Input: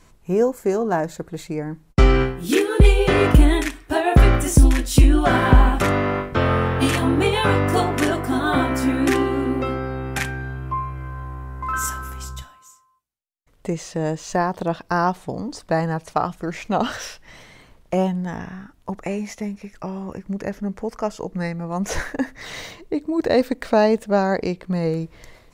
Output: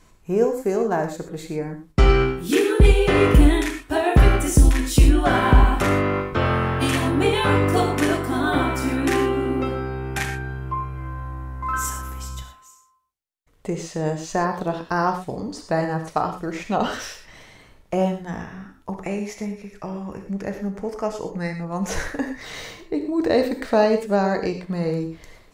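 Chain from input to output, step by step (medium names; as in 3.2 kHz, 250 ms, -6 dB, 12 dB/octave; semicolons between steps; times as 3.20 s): gated-style reverb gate 140 ms flat, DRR 5 dB; trim -2 dB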